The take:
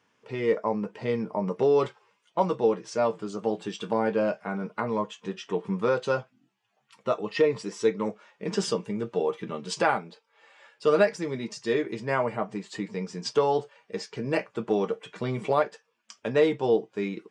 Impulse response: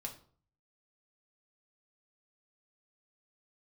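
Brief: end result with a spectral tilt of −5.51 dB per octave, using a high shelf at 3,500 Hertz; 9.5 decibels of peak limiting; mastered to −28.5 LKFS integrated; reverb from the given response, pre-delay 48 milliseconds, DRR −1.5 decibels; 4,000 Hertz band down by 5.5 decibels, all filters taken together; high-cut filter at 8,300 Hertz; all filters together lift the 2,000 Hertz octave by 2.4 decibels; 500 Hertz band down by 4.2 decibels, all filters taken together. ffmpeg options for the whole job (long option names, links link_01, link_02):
-filter_complex "[0:a]lowpass=8300,equalizer=frequency=500:width_type=o:gain=-5,equalizer=frequency=2000:width_type=o:gain=6,highshelf=frequency=3500:gain=-6,equalizer=frequency=4000:width_type=o:gain=-4.5,alimiter=limit=-19dB:level=0:latency=1,asplit=2[link_01][link_02];[1:a]atrim=start_sample=2205,adelay=48[link_03];[link_02][link_03]afir=irnorm=-1:irlink=0,volume=3.5dB[link_04];[link_01][link_04]amix=inputs=2:normalize=0"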